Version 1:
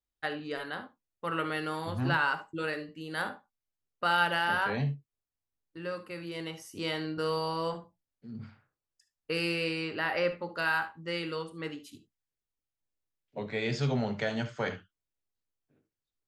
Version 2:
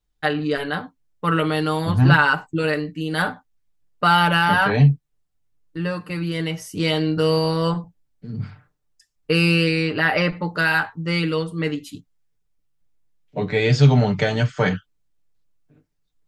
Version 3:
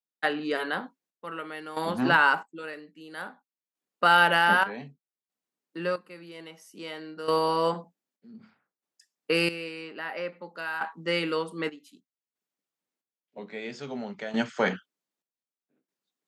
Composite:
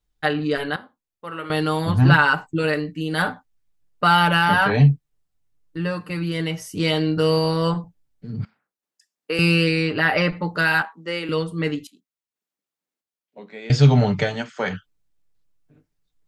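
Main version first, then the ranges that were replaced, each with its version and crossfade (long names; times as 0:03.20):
2
0:00.76–0:01.50: punch in from 1
0:08.45–0:09.39: punch in from 3
0:10.82–0:11.29: punch in from 3
0:11.87–0:13.70: punch in from 3
0:14.32–0:14.73: punch in from 3, crossfade 0.24 s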